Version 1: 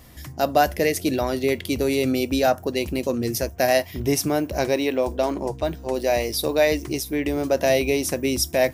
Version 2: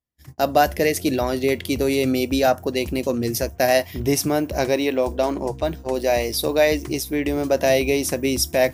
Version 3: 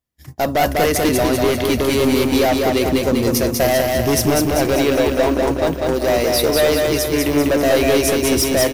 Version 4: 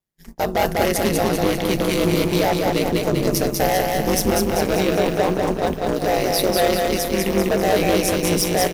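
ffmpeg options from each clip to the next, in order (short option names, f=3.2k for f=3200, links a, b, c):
-af "agate=range=-44dB:threshold=-35dB:ratio=16:detection=peak,volume=1.5dB"
-filter_complex "[0:a]acontrast=36,asoftclip=type=hard:threshold=-13.5dB,asplit=2[a][b];[b]aecho=0:1:196|392|588|784|980|1176|1372|1568:0.708|0.389|0.214|0.118|0.0648|0.0356|0.0196|0.0108[c];[a][c]amix=inputs=2:normalize=0"
-af "aeval=exprs='val(0)*sin(2*PI*94*n/s)':c=same"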